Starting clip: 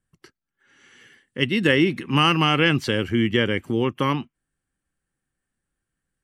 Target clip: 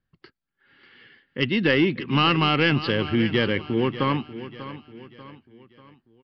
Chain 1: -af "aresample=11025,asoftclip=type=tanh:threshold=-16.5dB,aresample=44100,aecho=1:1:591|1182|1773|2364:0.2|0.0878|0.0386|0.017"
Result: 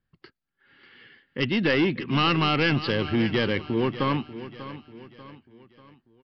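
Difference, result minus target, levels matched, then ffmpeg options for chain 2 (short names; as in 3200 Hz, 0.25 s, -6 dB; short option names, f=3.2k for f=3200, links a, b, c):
soft clip: distortion +7 dB
-af "aresample=11025,asoftclip=type=tanh:threshold=-10.5dB,aresample=44100,aecho=1:1:591|1182|1773|2364:0.2|0.0878|0.0386|0.017"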